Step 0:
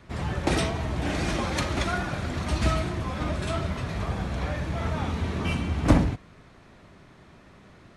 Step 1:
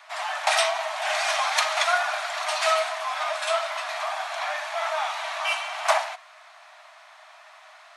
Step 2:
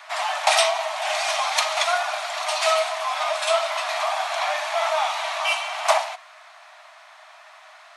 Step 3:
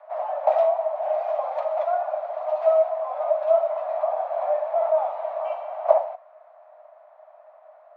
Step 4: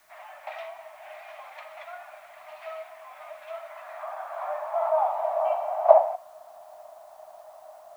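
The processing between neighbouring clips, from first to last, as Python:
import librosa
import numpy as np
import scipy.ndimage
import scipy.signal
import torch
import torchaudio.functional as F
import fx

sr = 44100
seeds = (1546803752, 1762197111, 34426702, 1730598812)

y1 = scipy.signal.sosfilt(scipy.signal.cheby1(8, 1.0, 620.0, 'highpass', fs=sr, output='sos'), x)
y1 = y1 * 10.0 ** (8.5 / 20.0)
y2 = fx.dynamic_eq(y1, sr, hz=1600.0, q=2.1, threshold_db=-38.0, ratio=4.0, max_db=-6)
y2 = fx.rider(y2, sr, range_db=10, speed_s=2.0)
y2 = y2 * 10.0 ** (3.5 / 20.0)
y3 = fx.lowpass_res(y2, sr, hz=520.0, q=6.0)
y4 = fx.filter_sweep_highpass(y3, sr, from_hz=2100.0, to_hz=730.0, start_s=3.49, end_s=5.38, q=1.9)
y4 = fx.dmg_noise_colour(y4, sr, seeds[0], colour='white', level_db=-64.0)
y4 = y4 * 10.0 ** (-1.0 / 20.0)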